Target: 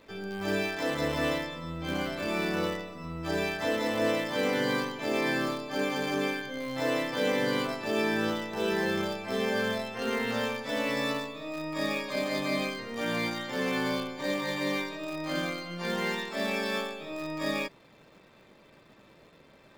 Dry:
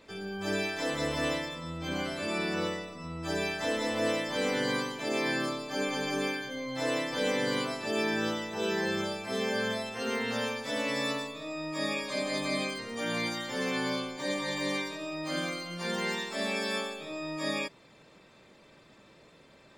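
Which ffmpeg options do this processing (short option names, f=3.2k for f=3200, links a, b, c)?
-filter_complex "[0:a]equalizer=f=9.8k:w=0.6:g=-11,asplit=2[a][b];[b]acrusher=bits=6:dc=4:mix=0:aa=0.000001,volume=-10.5dB[c];[a][c]amix=inputs=2:normalize=0"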